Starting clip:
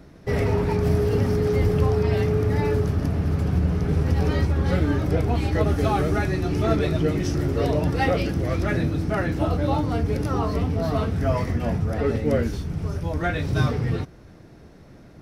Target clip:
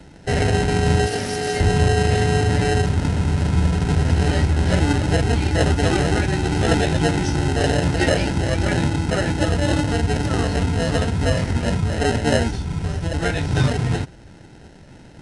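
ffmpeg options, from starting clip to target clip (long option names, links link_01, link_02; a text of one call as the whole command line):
ffmpeg -i in.wav -filter_complex "[0:a]asettb=1/sr,asplit=3[link_01][link_02][link_03];[link_01]atrim=end=1.064[link_04];[link_02]atrim=start=1.06:end=1.6,asetpts=PTS-STARTPTS,afade=type=in:duration=0.004:curve=qsin,afade=type=out:start_time=0.536:duration=0.004:curve=qsin,aemphasis=mode=production:type=riaa[link_05];[link_03]atrim=start=1.596[link_06];[link_04][link_05]acrossfade=duration=0.004:curve1=hsin:curve2=qsin[link_07];[link_07][link_06]acrossfade=duration=0.004:curve1=qsin:curve2=hsin,acrossover=split=140|1300[link_08][link_09][link_10];[link_09]acrusher=samples=38:mix=1:aa=0.000001[link_11];[link_08][link_11][link_10]amix=inputs=3:normalize=0,aresample=22050,aresample=44100,volume=3.5dB" out.wav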